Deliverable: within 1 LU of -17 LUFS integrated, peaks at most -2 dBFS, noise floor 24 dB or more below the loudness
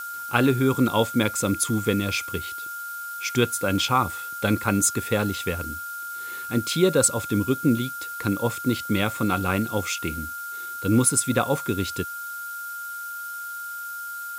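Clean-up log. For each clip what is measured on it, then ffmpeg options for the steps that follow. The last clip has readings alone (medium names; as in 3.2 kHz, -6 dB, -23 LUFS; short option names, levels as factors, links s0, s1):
steady tone 1.4 kHz; tone level -32 dBFS; noise floor -34 dBFS; noise floor target -49 dBFS; loudness -24.5 LUFS; peak level -5.0 dBFS; loudness target -17.0 LUFS
-> -af "bandreject=f=1400:w=30"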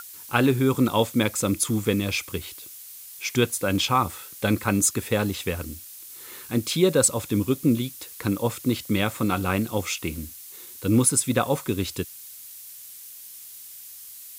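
steady tone not found; noise floor -43 dBFS; noise floor target -48 dBFS
-> -af "afftdn=nr=6:nf=-43"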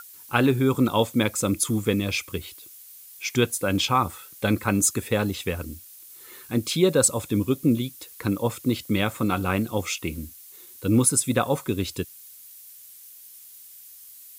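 noise floor -47 dBFS; noise floor target -48 dBFS
-> -af "afftdn=nr=6:nf=-47"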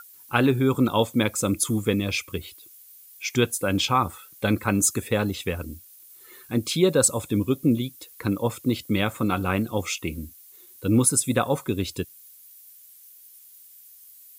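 noise floor -50 dBFS; loudness -24.0 LUFS; peak level -4.5 dBFS; loudness target -17.0 LUFS
-> -af "volume=2.24,alimiter=limit=0.794:level=0:latency=1"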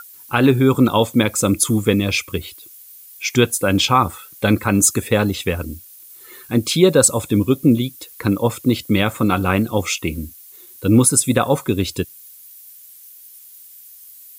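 loudness -17.5 LUFS; peak level -2.0 dBFS; noise floor -43 dBFS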